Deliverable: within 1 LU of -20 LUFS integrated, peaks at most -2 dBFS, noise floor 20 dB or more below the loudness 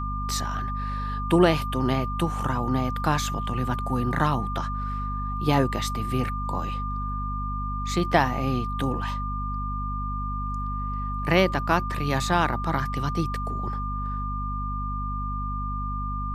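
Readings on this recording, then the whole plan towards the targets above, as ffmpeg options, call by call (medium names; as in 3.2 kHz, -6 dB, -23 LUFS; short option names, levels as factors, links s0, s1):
hum 50 Hz; highest harmonic 250 Hz; hum level -28 dBFS; steady tone 1.2 kHz; tone level -31 dBFS; loudness -27.0 LUFS; peak level -5.0 dBFS; loudness target -20.0 LUFS
-> -af "bandreject=f=50:t=h:w=6,bandreject=f=100:t=h:w=6,bandreject=f=150:t=h:w=6,bandreject=f=200:t=h:w=6,bandreject=f=250:t=h:w=6"
-af "bandreject=f=1200:w=30"
-af "volume=2.24,alimiter=limit=0.794:level=0:latency=1"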